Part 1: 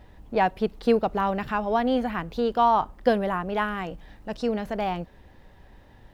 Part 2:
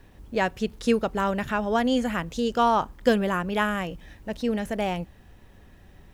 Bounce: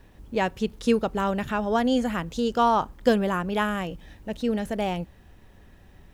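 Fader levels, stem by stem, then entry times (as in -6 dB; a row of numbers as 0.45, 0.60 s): -12.5, -1.0 dB; 0.00, 0.00 s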